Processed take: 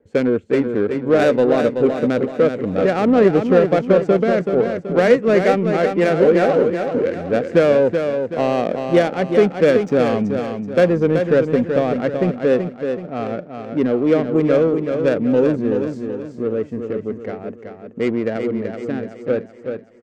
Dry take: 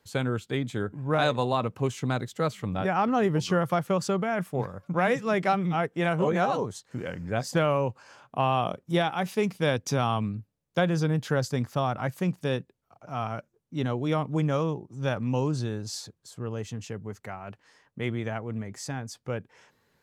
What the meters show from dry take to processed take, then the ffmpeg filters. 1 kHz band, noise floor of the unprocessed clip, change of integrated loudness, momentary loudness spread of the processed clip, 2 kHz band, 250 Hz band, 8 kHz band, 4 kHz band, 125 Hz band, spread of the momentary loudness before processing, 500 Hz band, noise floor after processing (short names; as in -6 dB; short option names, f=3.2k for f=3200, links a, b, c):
+3.5 dB, -75 dBFS, +10.5 dB, 11 LU, +7.0 dB, +11.5 dB, n/a, +1.5 dB, +2.5 dB, 12 LU, +14.0 dB, -39 dBFS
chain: -filter_complex "[0:a]equalizer=f=125:t=o:w=1:g=-8,equalizer=f=250:t=o:w=1:g=8,equalizer=f=500:t=o:w=1:g=12,equalizer=f=1k:t=o:w=1:g=-10,equalizer=f=2k:t=o:w=1:g=8,equalizer=f=4k:t=o:w=1:g=-6,equalizer=f=8k:t=o:w=1:g=11,asplit=2[a][b];[b]asoftclip=type=tanh:threshold=-19dB,volume=-5.5dB[c];[a][c]amix=inputs=2:normalize=0,adynamicsmooth=sensitivity=1:basefreq=970,aecho=1:1:379|758|1137|1516|1895:0.473|0.203|0.0875|0.0376|0.0162,volume=1.5dB"